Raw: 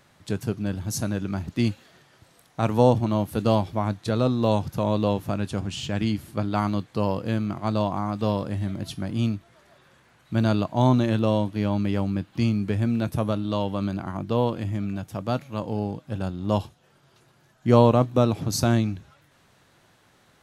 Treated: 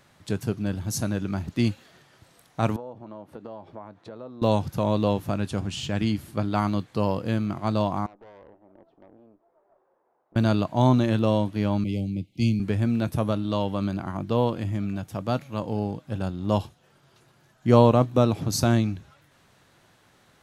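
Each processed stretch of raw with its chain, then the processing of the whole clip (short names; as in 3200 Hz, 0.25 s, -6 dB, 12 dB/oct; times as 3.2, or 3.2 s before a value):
2.76–4.42 notch 750 Hz, Q 16 + compressor 16:1, threshold -30 dBFS + band-pass 640 Hz, Q 0.8
8.06–10.36 compressor 3:1, threshold -35 dBFS + Chebyshev band-pass 390–870 Hz + tube stage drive 44 dB, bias 0.75
11.84–12.6 brick-wall FIR band-stop 820–2000 Hz + bell 810 Hz -14.5 dB 1.1 oct + three-band expander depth 70%
whole clip: dry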